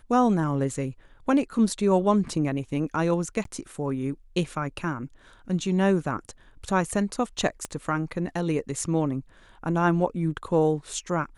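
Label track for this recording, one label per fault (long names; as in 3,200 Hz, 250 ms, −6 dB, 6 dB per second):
3.440000	3.450000	drop-out
7.650000	7.650000	click −17 dBFS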